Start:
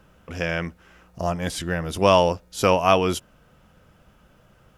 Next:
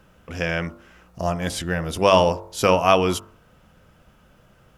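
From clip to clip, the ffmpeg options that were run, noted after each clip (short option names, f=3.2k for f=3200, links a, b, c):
-af "bandreject=f=48.81:t=h:w=4,bandreject=f=97.62:t=h:w=4,bandreject=f=146.43:t=h:w=4,bandreject=f=195.24:t=h:w=4,bandreject=f=244.05:t=h:w=4,bandreject=f=292.86:t=h:w=4,bandreject=f=341.67:t=h:w=4,bandreject=f=390.48:t=h:w=4,bandreject=f=439.29:t=h:w=4,bandreject=f=488.1:t=h:w=4,bandreject=f=536.91:t=h:w=4,bandreject=f=585.72:t=h:w=4,bandreject=f=634.53:t=h:w=4,bandreject=f=683.34:t=h:w=4,bandreject=f=732.15:t=h:w=4,bandreject=f=780.96:t=h:w=4,bandreject=f=829.77:t=h:w=4,bandreject=f=878.58:t=h:w=4,bandreject=f=927.39:t=h:w=4,bandreject=f=976.2:t=h:w=4,bandreject=f=1.02501k:t=h:w=4,bandreject=f=1.07382k:t=h:w=4,bandreject=f=1.12263k:t=h:w=4,bandreject=f=1.17144k:t=h:w=4,bandreject=f=1.22025k:t=h:w=4,bandreject=f=1.26906k:t=h:w=4,bandreject=f=1.31787k:t=h:w=4,bandreject=f=1.36668k:t=h:w=4,bandreject=f=1.41549k:t=h:w=4,volume=1.5dB"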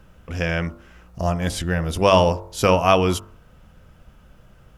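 -af "lowshelf=f=91:g=12"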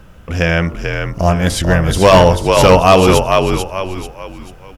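-filter_complex "[0:a]asplit=5[a][b][c][d][e];[b]adelay=440,afreqshift=-46,volume=-5.5dB[f];[c]adelay=880,afreqshift=-92,volume=-14.4dB[g];[d]adelay=1320,afreqshift=-138,volume=-23.2dB[h];[e]adelay=1760,afreqshift=-184,volume=-32.1dB[i];[a][f][g][h][i]amix=inputs=5:normalize=0,asoftclip=type=hard:threshold=-10.5dB,volume=9dB"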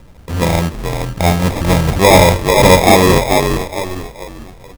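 -af "acrusher=samples=30:mix=1:aa=0.000001"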